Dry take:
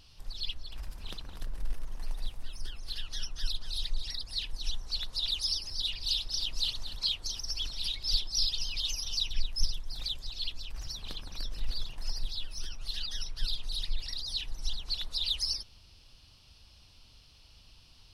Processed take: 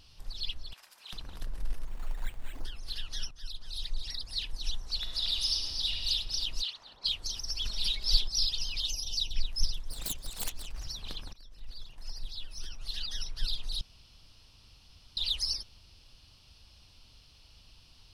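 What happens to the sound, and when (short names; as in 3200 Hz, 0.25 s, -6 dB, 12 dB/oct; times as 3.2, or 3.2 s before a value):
0.73–1.13 Bessel high-pass 1100 Hz
1.87–2.65 careless resampling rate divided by 8×, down none, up hold
3.31–4.47 fade in equal-power, from -13.5 dB
4.97–6.02 reverb throw, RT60 2.4 s, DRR 2 dB
6.61–7.04 band-pass 2300 Hz -> 580 Hz, Q 0.83
7.65–8.28 comb 4.9 ms, depth 92%
8.86–9.36 Butterworth band-stop 1600 Hz, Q 0.8
9.88–10.8 self-modulated delay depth 0.33 ms
11.33–13.12 fade in, from -20.5 dB
13.81–15.17 room tone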